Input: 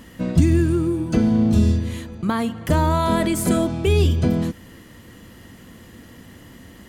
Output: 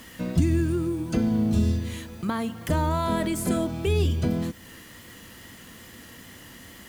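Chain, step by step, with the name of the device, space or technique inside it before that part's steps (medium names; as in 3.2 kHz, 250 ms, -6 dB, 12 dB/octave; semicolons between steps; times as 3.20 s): noise-reduction cassette on a plain deck (tape noise reduction on one side only encoder only; wow and flutter 26 cents; white noise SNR 31 dB); trim -6 dB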